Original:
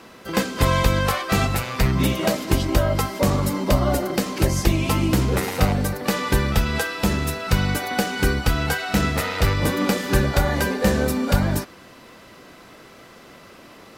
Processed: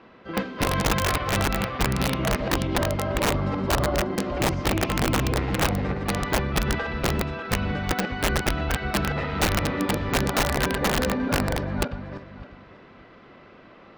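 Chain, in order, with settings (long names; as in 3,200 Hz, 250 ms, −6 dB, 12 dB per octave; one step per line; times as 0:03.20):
feedback delay that plays each chunk backwards 297 ms, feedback 40%, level −3 dB
Bessel low-pass filter 2,500 Hz, order 4
wrap-around overflow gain 10.5 dB
level −5 dB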